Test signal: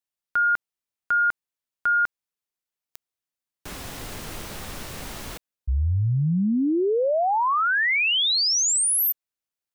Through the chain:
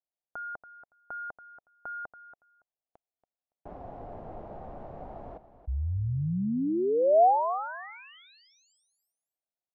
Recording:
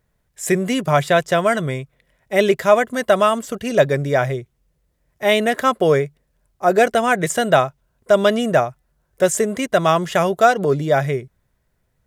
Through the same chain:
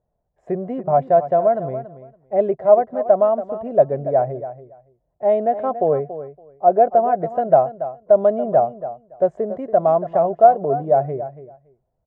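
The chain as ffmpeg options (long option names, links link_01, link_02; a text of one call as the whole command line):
ffmpeg -i in.wav -filter_complex "[0:a]lowpass=frequency=710:width_type=q:width=3.9,asplit=2[link_01][link_02];[link_02]aecho=0:1:282|564:0.224|0.0358[link_03];[link_01][link_03]amix=inputs=2:normalize=0,volume=-8dB" out.wav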